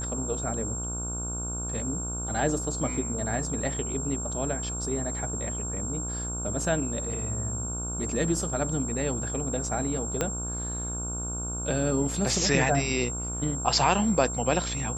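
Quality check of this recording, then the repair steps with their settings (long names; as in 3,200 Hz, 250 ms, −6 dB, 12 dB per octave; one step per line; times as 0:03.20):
mains buzz 60 Hz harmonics 25 −35 dBFS
whistle 7,500 Hz −33 dBFS
0:10.21: click −11 dBFS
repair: click removal
hum removal 60 Hz, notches 25
notch filter 7,500 Hz, Q 30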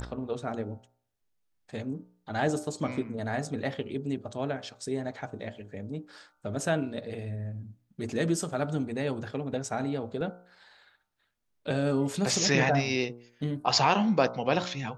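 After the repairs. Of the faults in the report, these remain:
0:10.21: click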